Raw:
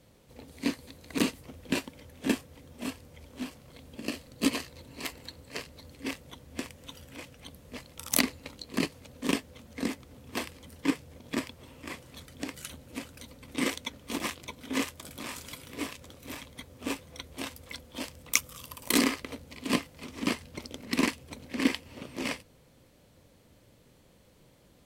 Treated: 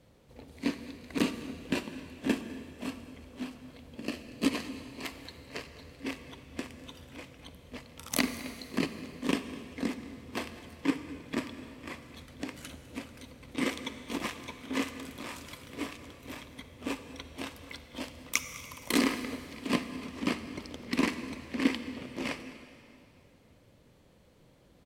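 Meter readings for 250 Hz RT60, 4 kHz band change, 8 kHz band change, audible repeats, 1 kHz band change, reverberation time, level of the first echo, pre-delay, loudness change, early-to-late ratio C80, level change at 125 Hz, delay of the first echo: 2.6 s, −3.0 dB, −6.0 dB, 1, −1.0 dB, 2.6 s, −20.0 dB, 34 ms, −2.0 dB, 10.5 dB, −0.5 dB, 205 ms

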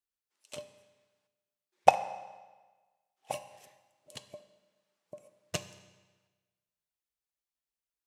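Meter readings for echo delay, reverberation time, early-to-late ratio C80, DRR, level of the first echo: no echo audible, 1.3 s, 14.5 dB, 11.0 dB, no echo audible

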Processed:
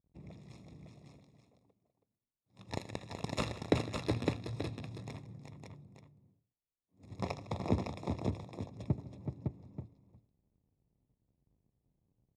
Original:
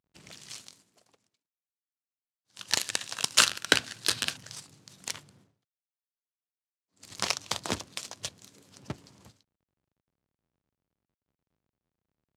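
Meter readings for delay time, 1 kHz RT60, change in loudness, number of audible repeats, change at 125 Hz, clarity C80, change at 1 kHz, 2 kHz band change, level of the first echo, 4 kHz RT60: 80 ms, no reverb audible, −10.5 dB, 5, +10.0 dB, no reverb audible, −6.0 dB, −16.0 dB, −15.5 dB, no reverb audible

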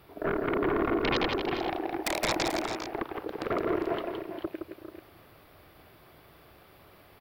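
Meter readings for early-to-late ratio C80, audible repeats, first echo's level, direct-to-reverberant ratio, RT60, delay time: no reverb audible, 3, −5.0 dB, no reverb audible, no reverb audible, 166 ms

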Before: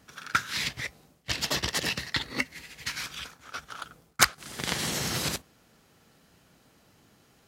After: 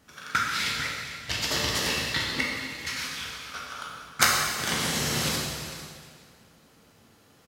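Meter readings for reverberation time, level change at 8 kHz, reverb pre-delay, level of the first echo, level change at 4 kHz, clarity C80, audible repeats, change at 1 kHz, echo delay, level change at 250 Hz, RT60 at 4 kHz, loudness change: 2.0 s, +2.5 dB, 9 ms, −14.0 dB, +3.0 dB, 1.5 dB, 1, +3.5 dB, 449 ms, +3.0 dB, 1.9 s, +2.5 dB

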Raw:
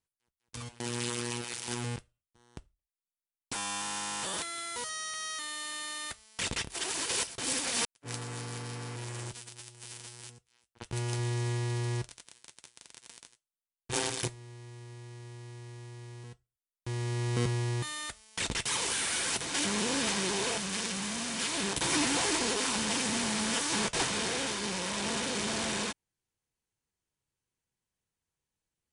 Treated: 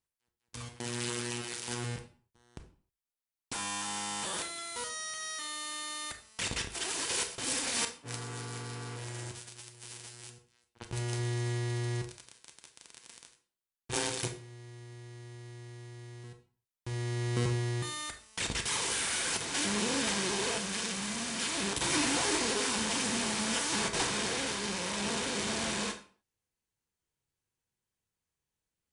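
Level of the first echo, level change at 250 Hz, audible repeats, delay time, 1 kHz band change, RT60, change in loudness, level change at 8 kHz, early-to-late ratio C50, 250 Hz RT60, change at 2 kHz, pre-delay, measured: no echo audible, −1.0 dB, no echo audible, no echo audible, −1.0 dB, 0.45 s, −1.0 dB, −1.0 dB, 11.0 dB, 0.50 s, −0.5 dB, 25 ms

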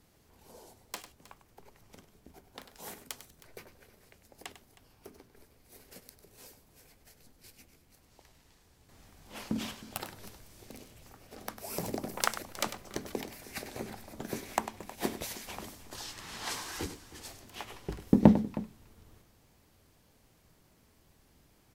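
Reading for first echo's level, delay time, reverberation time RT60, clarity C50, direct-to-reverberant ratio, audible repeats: −12.0 dB, 99 ms, no reverb audible, no reverb audible, no reverb audible, 2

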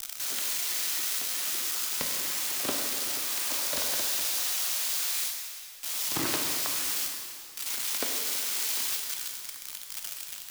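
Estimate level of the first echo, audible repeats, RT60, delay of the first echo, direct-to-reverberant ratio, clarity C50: no echo audible, no echo audible, 2.5 s, no echo audible, 1.5 dB, 2.5 dB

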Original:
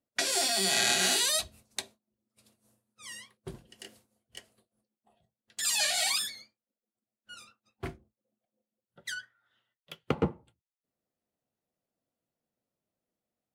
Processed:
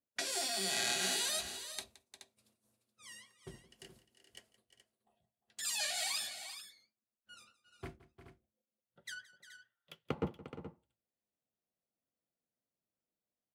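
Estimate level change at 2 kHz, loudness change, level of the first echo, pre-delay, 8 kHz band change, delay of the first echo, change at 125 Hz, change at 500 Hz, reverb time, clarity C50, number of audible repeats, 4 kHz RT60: −8.0 dB, −8.5 dB, −18.5 dB, no reverb audible, −8.0 dB, 170 ms, −8.0 dB, −8.0 dB, no reverb audible, no reverb audible, 3, no reverb audible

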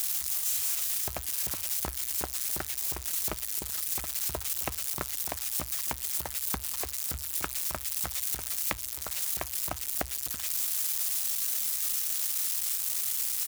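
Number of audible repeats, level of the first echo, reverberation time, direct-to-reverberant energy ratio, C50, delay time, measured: 1, −23.5 dB, no reverb audible, no reverb audible, no reverb audible, 262 ms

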